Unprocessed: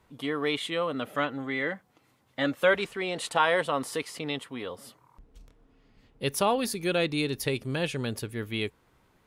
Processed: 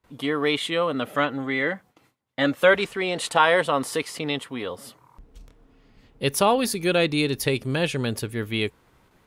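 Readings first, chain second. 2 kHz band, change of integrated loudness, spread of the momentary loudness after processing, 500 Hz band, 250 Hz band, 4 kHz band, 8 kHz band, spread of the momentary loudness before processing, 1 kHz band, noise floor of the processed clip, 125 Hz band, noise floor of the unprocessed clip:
+5.5 dB, +5.5 dB, 11 LU, +5.5 dB, +5.5 dB, +5.5 dB, +5.5 dB, 11 LU, +5.5 dB, -63 dBFS, +5.5 dB, -67 dBFS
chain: gate with hold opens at -55 dBFS; trim +5.5 dB

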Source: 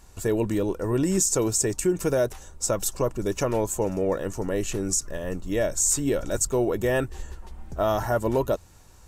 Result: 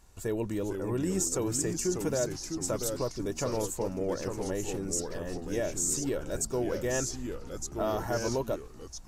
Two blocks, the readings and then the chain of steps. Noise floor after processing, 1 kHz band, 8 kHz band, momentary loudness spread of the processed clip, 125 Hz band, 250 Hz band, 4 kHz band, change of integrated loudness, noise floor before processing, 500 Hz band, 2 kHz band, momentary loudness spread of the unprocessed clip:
-46 dBFS, -7.0 dB, -6.0 dB, 7 LU, -6.0 dB, -5.5 dB, -4.0 dB, -6.5 dB, -50 dBFS, -6.5 dB, -6.5 dB, 8 LU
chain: ever faster or slower copies 427 ms, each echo -2 st, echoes 3, each echo -6 dB; trim -7.5 dB

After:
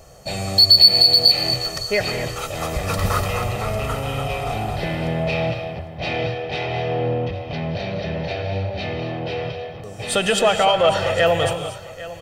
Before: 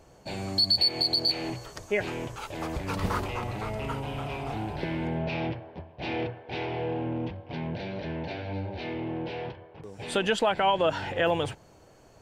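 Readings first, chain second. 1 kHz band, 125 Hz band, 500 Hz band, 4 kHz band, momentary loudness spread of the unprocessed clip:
+7.5 dB, +9.5 dB, +9.0 dB, +12.5 dB, 13 LU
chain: treble shelf 5.9 kHz +10 dB; comb 1.6 ms, depth 59%; in parallel at -5.5 dB: saturation -23.5 dBFS, distortion -6 dB; on the sum: delay 802 ms -16.5 dB; gated-style reverb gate 270 ms rising, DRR 6.5 dB; trim +3 dB

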